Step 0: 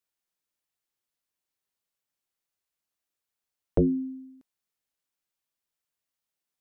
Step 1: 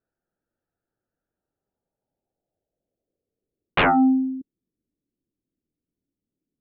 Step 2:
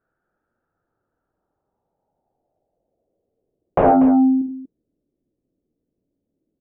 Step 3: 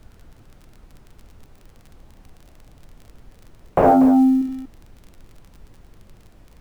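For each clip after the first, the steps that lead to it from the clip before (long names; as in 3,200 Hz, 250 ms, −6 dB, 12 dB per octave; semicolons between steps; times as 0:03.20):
adaptive Wiener filter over 41 samples; low-pass filter sweep 1,400 Hz → 300 Hz, 0:01.24–0:04.10; sine wavefolder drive 14 dB, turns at −11 dBFS; level −3 dB
downward compressor, threshold −21 dBFS, peak gain reduction 5.5 dB; low-pass filter sweep 1,400 Hz → 590 Hz, 0:00.34–0:04.20; on a send: multi-tap delay 49/71/96/240 ms −9/−8.5/−13.5/−11 dB; on the sum: level +7 dB
mu-law and A-law mismatch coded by mu; surface crackle 34 per second −35 dBFS; background noise brown −45 dBFS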